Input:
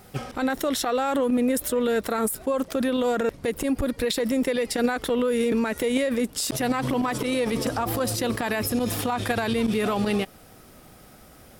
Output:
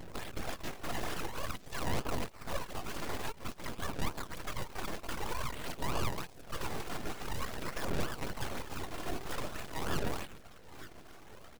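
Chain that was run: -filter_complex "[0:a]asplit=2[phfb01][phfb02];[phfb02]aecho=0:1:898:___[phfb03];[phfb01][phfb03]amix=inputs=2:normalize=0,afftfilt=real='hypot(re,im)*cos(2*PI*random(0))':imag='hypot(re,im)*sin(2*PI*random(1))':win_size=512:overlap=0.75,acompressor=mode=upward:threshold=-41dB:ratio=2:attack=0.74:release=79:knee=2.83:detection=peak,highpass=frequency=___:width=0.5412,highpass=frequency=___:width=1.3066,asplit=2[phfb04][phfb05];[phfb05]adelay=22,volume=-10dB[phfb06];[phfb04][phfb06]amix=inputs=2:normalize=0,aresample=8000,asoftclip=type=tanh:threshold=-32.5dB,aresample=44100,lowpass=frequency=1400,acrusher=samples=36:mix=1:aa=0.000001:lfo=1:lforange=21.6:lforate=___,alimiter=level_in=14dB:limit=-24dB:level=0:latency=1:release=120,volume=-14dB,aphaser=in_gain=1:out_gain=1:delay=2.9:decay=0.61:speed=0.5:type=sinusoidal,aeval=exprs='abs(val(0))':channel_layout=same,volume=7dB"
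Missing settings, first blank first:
0.0794, 600, 600, 3.3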